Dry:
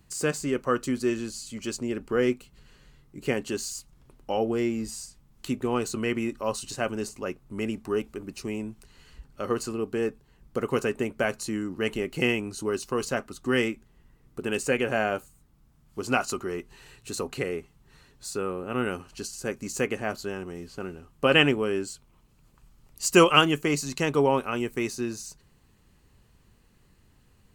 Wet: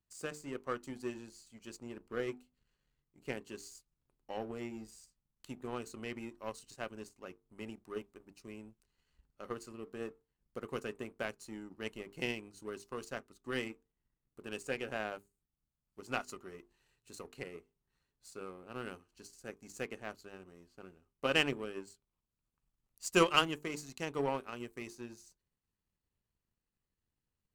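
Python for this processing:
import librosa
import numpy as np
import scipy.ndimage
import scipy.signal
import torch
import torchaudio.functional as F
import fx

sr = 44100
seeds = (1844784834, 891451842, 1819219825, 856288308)

y = fx.hum_notches(x, sr, base_hz=50, count=9)
y = fx.power_curve(y, sr, exponent=1.4)
y = y * 10.0 ** (-6.5 / 20.0)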